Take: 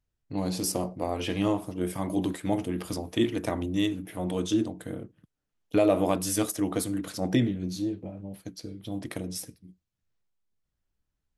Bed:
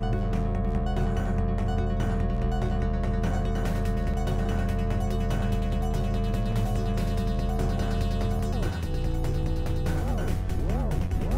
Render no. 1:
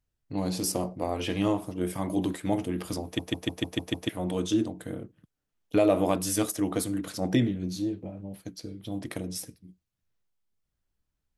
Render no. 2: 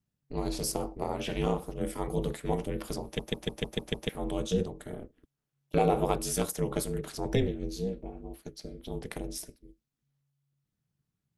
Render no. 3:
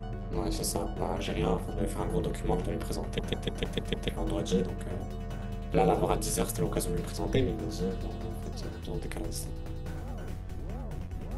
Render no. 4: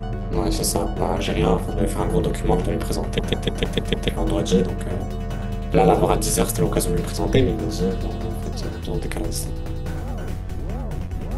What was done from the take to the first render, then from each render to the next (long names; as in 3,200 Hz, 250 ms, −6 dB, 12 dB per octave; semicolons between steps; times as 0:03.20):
0:03.04: stutter in place 0.15 s, 7 plays
tape wow and flutter 28 cents; ring modulation 140 Hz
mix in bed −11 dB
level +10 dB; brickwall limiter −2 dBFS, peak gain reduction 2 dB